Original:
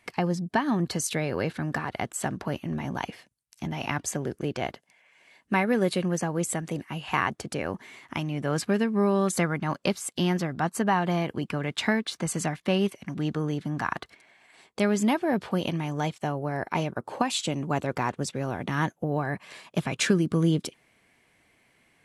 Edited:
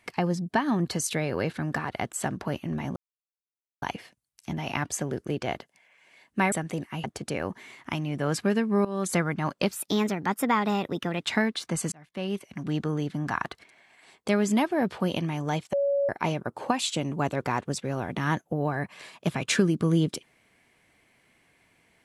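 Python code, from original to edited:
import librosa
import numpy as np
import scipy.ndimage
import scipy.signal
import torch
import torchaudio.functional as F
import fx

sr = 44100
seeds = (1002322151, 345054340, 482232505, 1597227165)

y = fx.edit(x, sr, fx.insert_silence(at_s=2.96, length_s=0.86),
    fx.cut(start_s=5.66, length_s=0.84),
    fx.cut(start_s=7.02, length_s=0.26),
    fx.fade_in_from(start_s=9.09, length_s=0.28, floor_db=-16.5),
    fx.speed_span(start_s=9.95, length_s=1.77, speed=1.18),
    fx.fade_in_span(start_s=12.43, length_s=0.76),
    fx.bleep(start_s=16.24, length_s=0.36, hz=562.0, db=-21.5), tone=tone)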